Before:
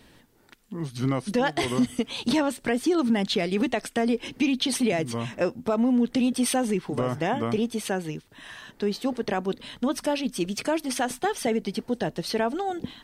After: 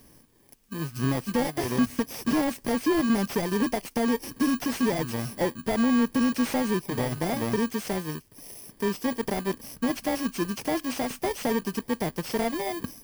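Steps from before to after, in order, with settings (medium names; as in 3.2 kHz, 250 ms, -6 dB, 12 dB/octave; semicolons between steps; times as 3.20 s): bit-reversed sample order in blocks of 32 samples; slew-rate limiter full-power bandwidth 130 Hz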